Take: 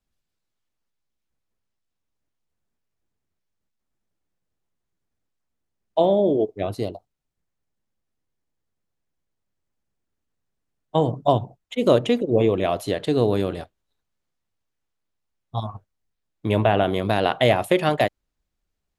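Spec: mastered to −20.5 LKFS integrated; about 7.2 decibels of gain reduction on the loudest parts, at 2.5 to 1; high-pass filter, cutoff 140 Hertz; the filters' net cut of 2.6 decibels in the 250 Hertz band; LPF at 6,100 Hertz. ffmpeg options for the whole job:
ffmpeg -i in.wav -af "highpass=140,lowpass=6100,equalizer=frequency=250:width_type=o:gain=-3,acompressor=threshold=-24dB:ratio=2.5,volume=8dB" out.wav

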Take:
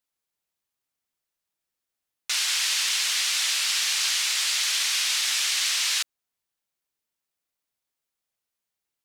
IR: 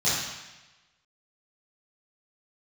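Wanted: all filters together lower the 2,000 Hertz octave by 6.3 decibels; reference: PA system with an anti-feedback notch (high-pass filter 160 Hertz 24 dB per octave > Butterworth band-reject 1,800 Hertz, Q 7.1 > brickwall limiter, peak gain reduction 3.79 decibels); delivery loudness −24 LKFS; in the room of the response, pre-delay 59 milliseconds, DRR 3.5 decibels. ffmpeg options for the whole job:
-filter_complex "[0:a]equalizer=frequency=2000:width_type=o:gain=-7.5,asplit=2[link_01][link_02];[1:a]atrim=start_sample=2205,adelay=59[link_03];[link_02][link_03]afir=irnorm=-1:irlink=0,volume=-17dB[link_04];[link_01][link_04]amix=inputs=2:normalize=0,highpass=frequency=160:width=0.5412,highpass=frequency=160:width=1.3066,asuperstop=centerf=1800:order=8:qfactor=7.1,volume=-1.5dB,alimiter=limit=-16.5dB:level=0:latency=1"

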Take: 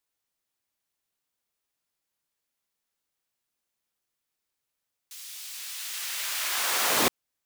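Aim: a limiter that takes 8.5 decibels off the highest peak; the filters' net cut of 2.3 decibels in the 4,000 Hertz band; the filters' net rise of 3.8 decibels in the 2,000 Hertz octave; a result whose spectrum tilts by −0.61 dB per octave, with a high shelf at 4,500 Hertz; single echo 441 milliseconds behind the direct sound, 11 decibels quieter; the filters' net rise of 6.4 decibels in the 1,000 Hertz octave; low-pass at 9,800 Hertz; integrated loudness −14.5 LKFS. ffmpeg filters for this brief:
ffmpeg -i in.wav -af "lowpass=9800,equalizer=frequency=1000:width_type=o:gain=7,equalizer=frequency=2000:width_type=o:gain=3.5,equalizer=frequency=4000:width_type=o:gain=-7.5,highshelf=frequency=4500:gain=5.5,alimiter=limit=-17dB:level=0:latency=1,aecho=1:1:441:0.282,volume=14.5dB" out.wav

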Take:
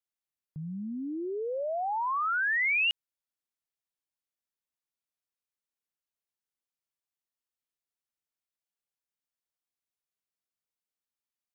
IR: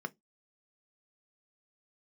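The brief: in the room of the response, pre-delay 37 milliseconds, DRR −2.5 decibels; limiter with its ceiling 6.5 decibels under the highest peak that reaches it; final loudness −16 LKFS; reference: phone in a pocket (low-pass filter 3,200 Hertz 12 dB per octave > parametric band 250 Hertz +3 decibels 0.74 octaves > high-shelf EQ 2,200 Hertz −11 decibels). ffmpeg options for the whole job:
-filter_complex "[0:a]alimiter=level_in=5dB:limit=-24dB:level=0:latency=1,volume=-5dB,asplit=2[link_01][link_02];[1:a]atrim=start_sample=2205,adelay=37[link_03];[link_02][link_03]afir=irnorm=-1:irlink=0,volume=1dB[link_04];[link_01][link_04]amix=inputs=2:normalize=0,lowpass=3200,equalizer=frequency=250:width_type=o:width=0.74:gain=3,highshelf=frequency=2200:gain=-11,volume=13.5dB"

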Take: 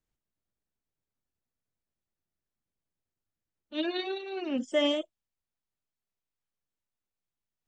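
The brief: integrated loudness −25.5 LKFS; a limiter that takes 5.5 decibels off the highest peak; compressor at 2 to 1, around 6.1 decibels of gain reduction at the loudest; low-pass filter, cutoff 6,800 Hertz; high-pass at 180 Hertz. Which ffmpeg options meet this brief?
ffmpeg -i in.wav -af "highpass=180,lowpass=6800,acompressor=threshold=-33dB:ratio=2,volume=11.5dB,alimiter=limit=-16dB:level=0:latency=1" out.wav

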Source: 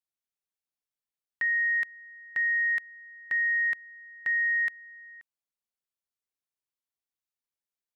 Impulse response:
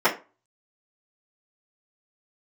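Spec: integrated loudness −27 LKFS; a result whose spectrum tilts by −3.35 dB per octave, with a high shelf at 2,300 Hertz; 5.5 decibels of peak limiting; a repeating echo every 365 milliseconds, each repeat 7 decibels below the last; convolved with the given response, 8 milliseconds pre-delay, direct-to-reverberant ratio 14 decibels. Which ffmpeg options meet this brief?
-filter_complex "[0:a]highshelf=frequency=2300:gain=-5,alimiter=level_in=6dB:limit=-24dB:level=0:latency=1,volume=-6dB,aecho=1:1:365|730|1095|1460|1825:0.447|0.201|0.0905|0.0407|0.0183,asplit=2[link_01][link_02];[1:a]atrim=start_sample=2205,adelay=8[link_03];[link_02][link_03]afir=irnorm=-1:irlink=0,volume=-32.5dB[link_04];[link_01][link_04]amix=inputs=2:normalize=0,volume=8dB"

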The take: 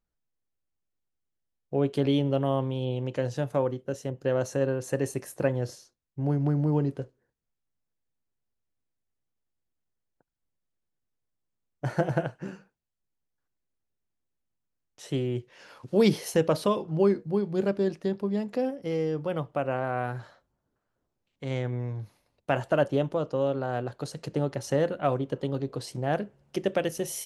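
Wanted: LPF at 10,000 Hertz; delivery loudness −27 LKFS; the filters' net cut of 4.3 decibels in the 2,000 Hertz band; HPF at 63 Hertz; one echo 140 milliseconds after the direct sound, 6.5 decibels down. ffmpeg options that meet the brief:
ffmpeg -i in.wav -af "highpass=63,lowpass=10000,equalizer=frequency=2000:width_type=o:gain=-6,aecho=1:1:140:0.473,volume=1.5dB" out.wav

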